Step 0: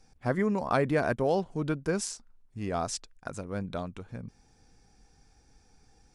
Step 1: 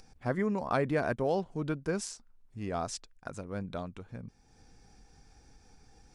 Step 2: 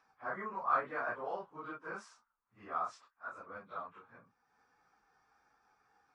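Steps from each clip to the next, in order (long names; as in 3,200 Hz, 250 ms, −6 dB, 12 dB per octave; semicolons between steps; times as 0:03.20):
high-shelf EQ 8,700 Hz −5 dB; upward compression, threshold −46 dBFS; level −3 dB
random phases in long frames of 100 ms; resonant band-pass 1,200 Hz, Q 3.7; level +5.5 dB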